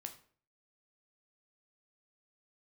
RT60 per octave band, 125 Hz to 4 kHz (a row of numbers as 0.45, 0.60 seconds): 0.55, 0.55, 0.50, 0.45, 0.45, 0.35 seconds